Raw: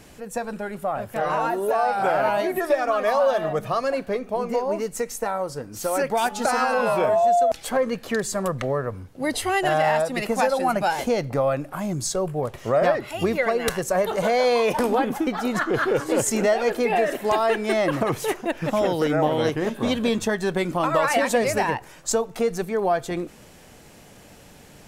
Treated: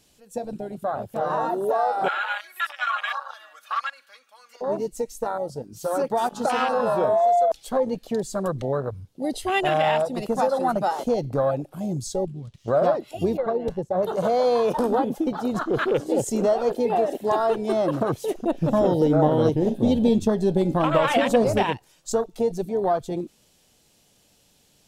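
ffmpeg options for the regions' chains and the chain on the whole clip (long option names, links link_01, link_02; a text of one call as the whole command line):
ffmpeg -i in.wav -filter_complex "[0:a]asettb=1/sr,asplit=3[link_01][link_02][link_03];[link_01]atrim=end=2.084[link_04];[link_02]atrim=start=2.08:end=4.61,asetpts=PTS-STARTPTS,afade=type=in:duration=0.004:curve=qsin,afade=type=out:start_time=2.526:duration=0.004:curve=qsin,aecho=1:1:3.6:0.69,atrim=end_sample=111573,acompressor=threshold=-22dB:ratio=5:attack=3.2:release=140:knee=1:detection=peak,highpass=frequency=1400:width_type=q:width=3.5[link_05];[link_03]atrim=start=4.606[link_06];[link_04][link_05]acrossfade=duration=0.004:curve1=hsin:curve2=qsin[link_07];[link_07][link_06]acrossfade=duration=0.004:curve1=qsin:curve2=hsin,asettb=1/sr,asplit=3[link_08][link_09][link_10];[link_08]atrim=end=12.254[link_11];[link_09]atrim=start=12.25:end=12.68,asetpts=PTS-STARTPTS,afade=type=in:duration=0.004:curve=qsin,afade=type=out:start_time=0.426:duration=0.004:curve=qsin,lowpass=6100,equalizer=frequency=640:width=0.57:gain=-12.5,aeval=exprs='sgn(val(0))*max(abs(val(0))-0.00266,0)':channel_layout=same[link_12];[link_10]atrim=start=12.676[link_13];[link_11][link_12]acrossfade=duration=0.004:curve1=hsin:curve2=qsin[link_14];[link_14][link_13]acrossfade=duration=0.004:curve1=qsin:curve2=hsin,asettb=1/sr,asplit=3[link_15][link_16][link_17];[link_15]atrim=end=13.374[link_18];[link_16]atrim=start=13.37:end=14.03,asetpts=PTS-STARTPTS,afade=type=in:duration=0.004:curve=qsin,afade=type=out:start_time=0.656:duration=0.004:curve=qsin,lowpass=frequency=1000:poles=1,agate=range=-33dB:threshold=-34dB:ratio=3:release=100:detection=peak[link_19];[link_17]atrim=start=14.026[link_20];[link_18][link_19]acrossfade=duration=0.004:curve1=hsin:curve2=qsin[link_21];[link_21][link_20]acrossfade=duration=0.004:curve1=qsin:curve2=hsin,asettb=1/sr,asplit=3[link_22][link_23][link_24];[link_22]atrim=end=18.354[link_25];[link_23]atrim=start=18.35:end=21.63,asetpts=PTS-STARTPTS,afade=type=in:duration=0.004:curve=qsin,afade=type=out:start_time=3.276:duration=0.004:curve=qsin,lowshelf=frequency=360:gain=7,bandreject=frequency=139.3:width_type=h:width=4,bandreject=frequency=278.6:width_type=h:width=4,bandreject=frequency=417.9:width_type=h:width=4,bandreject=frequency=557.2:width_type=h:width=4,bandreject=frequency=696.5:width_type=h:width=4,bandreject=frequency=835.8:width_type=h:width=4,bandreject=frequency=975.1:width_type=h:width=4,bandreject=frequency=1114.4:width_type=h:width=4,bandreject=frequency=1253.7:width_type=h:width=4,bandreject=frequency=1393:width_type=h:width=4,bandreject=frequency=1532.3:width_type=h:width=4,bandreject=frequency=1671.6:width_type=h:width=4,bandreject=frequency=1810.9:width_type=h:width=4,bandreject=frequency=1950.2:width_type=h:width=4,bandreject=frequency=2089.5:width_type=h:width=4,bandreject=frequency=2228.8:width_type=h:width=4,bandreject=frequency=2368.1:width_type=h:width=4,bandreject=frequency=2507.4:width_type=h:width=4,bandreject=frequency=2646.7:width_type=h:width=4,bandreject=frequency=2786:width_type=h:width=4,bandreject=frequency=2925.3:width_type=h:width=4,bandreject=frequency=3064.6:width_type=h:width=4,bandreject=frequency=3203.9:width_type=h:width=4,bandreject=frequency=3343.2:width_type=h:width=4,bandreject=frequency=3482.5:width_type=h:width=4,bandreject=frequency=3621.8:width_type=h:width=4,bandreject=frequency=3761.1:width_type=h:width=4,bandreject=frequency=3900.4:width_type=h:width=4,bandreject=frequency=4039.7:width_type=h:width=4,bandreject=frequency=4179:width_type=h:width=4,bandreject=frequency=4318.3:width_type=h:width=4,bandreject=frequency=4457.6:width_type=h:width=4,bandreject=frequency=4596.9:width_type=h:width=4,bandreject=frequency=4736.2:width_type=h:width=4,bandreject=frequency=4875.5:width_type=h:width=4,bandreject=frequency=5014.8:width_type=h:width=4,bandreject=frequency=5154.1:width_type=h:width=4,bandreject=frequency=5293.4:width_type=h:width=4[link_26];[link_24]atrim=start=21.626[link_27];[link_25][link_26]acrossfade=duration=0.004:curve1=hsin:curve2=qsin[link_28];[link_28][link_27]acrossfade=duration=0.004:curve1=qsin:curve2=hsin,afwtdn=0.0631,highshelf=frequency=2600:width_type=q:width=1.5:gain=8" out.wav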